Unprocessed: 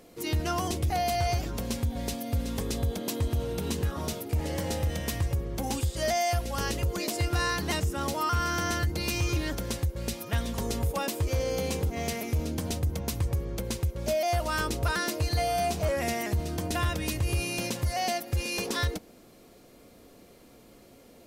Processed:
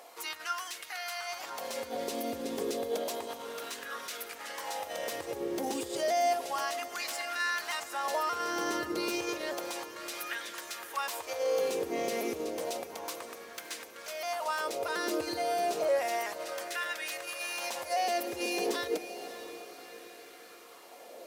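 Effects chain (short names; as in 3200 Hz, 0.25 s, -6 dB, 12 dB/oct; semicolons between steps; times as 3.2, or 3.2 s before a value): tracing distortion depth 0.021 ms; limiter -30 dBFS, peak gain reduction 10.5 dB; LFO high-pass sine 0.31 Hz 350–1600 Hz; diffused feedback echo 0.59 s, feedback 54%, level -12 dB; gain +3.5 dB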